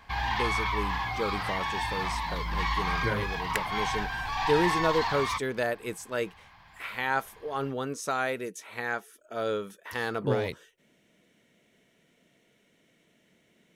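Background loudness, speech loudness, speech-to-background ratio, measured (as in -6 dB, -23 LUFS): -30.0 LUFS, -32.5 LUFS, -2.5 dB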